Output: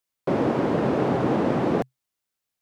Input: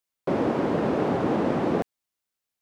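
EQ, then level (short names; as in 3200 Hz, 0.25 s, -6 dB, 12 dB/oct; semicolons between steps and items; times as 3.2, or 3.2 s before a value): bell 130 Hz +6 dB 0.22 oct; +1.5 dB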